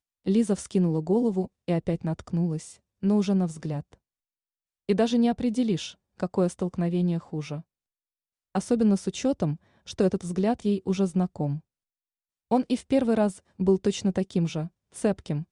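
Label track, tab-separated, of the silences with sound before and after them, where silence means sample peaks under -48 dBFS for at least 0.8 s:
3.940000	4.890000	silence
7.620000	8.550000	silence
11.600000	12.510000	silence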